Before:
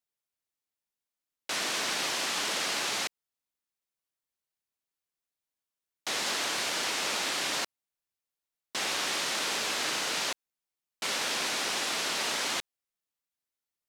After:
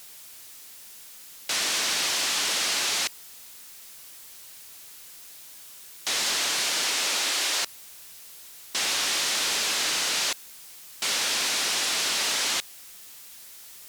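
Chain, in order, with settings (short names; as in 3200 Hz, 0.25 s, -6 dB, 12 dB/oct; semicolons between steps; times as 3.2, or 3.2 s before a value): zero-crossing step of -45 dBFS; high shelf 2100 Hz +9 dB; sine folder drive 4 dB, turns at -11 dBFS; 6.54–7.61 HPF 110 Hz -> 330 Hz 24 dB/oct; gain -8.5 dB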